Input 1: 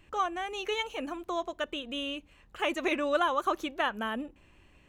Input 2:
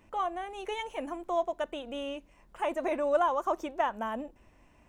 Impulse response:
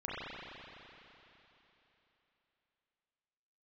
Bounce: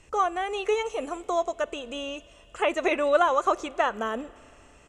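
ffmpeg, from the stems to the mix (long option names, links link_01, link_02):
-filter_complex "[0:a]aecho=1:1:1.5:0.31,volume=1dB,asplit=2[link_01][link_02];[link_02]volume=-24dB[link_03];[1:a]bass=frequency=250:gain=-15,treble=frequency=4000:gain=13,volume=-3dB[link_04];[2:a]atrim=start_sample=2205[link_05];[link_03][link_05]afir=irnorm=-1:irlink=0[link_06];[link_01][link_04][link_06]amix=inputs=3:normalize=0,acrossover=split=3600[link_07][link_08];[link_08]acompressor=threshold=-51dB:ratio=4:attack=1:release=60[link_09];[link_07][link_09]amix=inputs=2:normalize=0,lowpass=frequency=7600:width_type=q:width=2.5,equalizer=frequency=440:width=3.2:gain=8.5"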